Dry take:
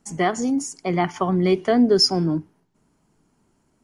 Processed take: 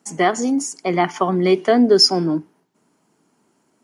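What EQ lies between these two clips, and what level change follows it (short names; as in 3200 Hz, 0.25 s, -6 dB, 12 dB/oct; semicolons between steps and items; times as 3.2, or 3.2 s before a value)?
HPF 230 Hz 12 dB/oct; +4.5 dB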